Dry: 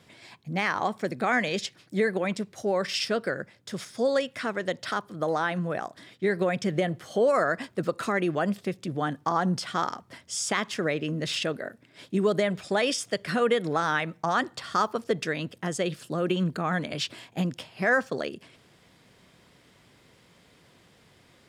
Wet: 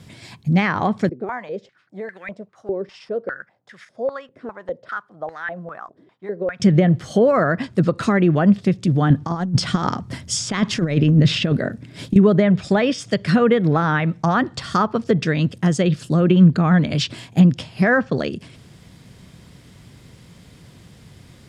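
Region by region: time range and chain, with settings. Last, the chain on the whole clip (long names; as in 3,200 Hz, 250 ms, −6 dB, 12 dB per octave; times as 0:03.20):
0:01.09–0:06.60: noise that follows the level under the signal 34 dB + band-pass on a step sequencer 5 Hz 400–1,800 Hz
0:09.10–0:12.16: low-shelf EQ 370 Hz +4.5 dB + compressor whose output falls as the input rises −28 dBFS, ratio −0.5
whole clip: treble cut that deepens with the level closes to 2,300 Hz, closed at −21.5 dBFS; bass and treble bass +14 dB, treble +5 dB; level +5.5 dB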